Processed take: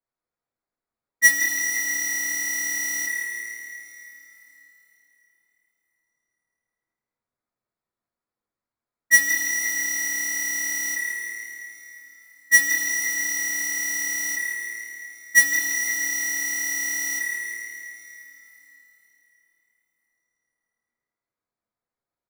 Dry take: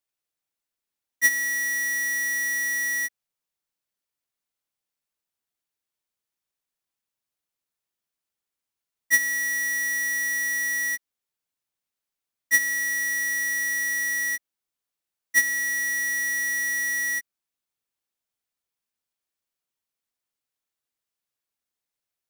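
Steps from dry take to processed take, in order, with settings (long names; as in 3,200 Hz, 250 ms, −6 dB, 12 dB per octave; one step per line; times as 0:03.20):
adaptive Wiener filter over 15 samples
echo with shifted repeats 164 ms, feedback 49%, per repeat +37 Hz, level −8 dB
coupled-rooms reverb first 0.31 s, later 3.9 s, from −18 dB, DRR −5 dB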